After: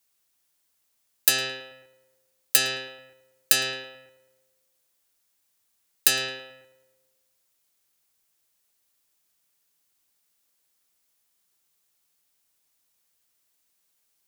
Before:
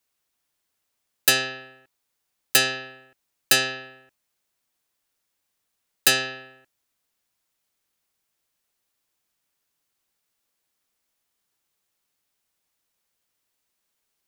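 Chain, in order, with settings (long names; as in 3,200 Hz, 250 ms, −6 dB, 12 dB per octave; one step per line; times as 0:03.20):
high-shelf EQ 4,200 Hz +8 dB
downward compressor 4 to 1, threshold −15 dBFS, peak gain reduction 8 dB
on a send: feedback echo with a low-pass in the loop 109 ms, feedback 59%, low-pass 2,400 Hz, level −11 dB
on the sum: level −1 dB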